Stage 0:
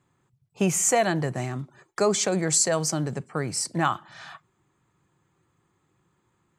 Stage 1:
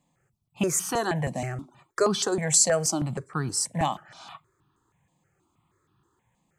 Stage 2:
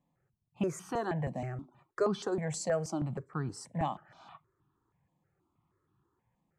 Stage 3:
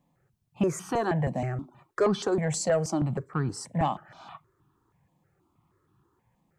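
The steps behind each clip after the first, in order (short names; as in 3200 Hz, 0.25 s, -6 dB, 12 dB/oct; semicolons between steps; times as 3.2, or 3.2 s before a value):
step phaser 6.3 Hz 380–2100 Hz; gain +2.5 dB
LPF 1200 Hz 6 dB/oct; gain -5.5 dB
soft clip -22.5 dBFS, distortion -20 dB; gain +7.5 dB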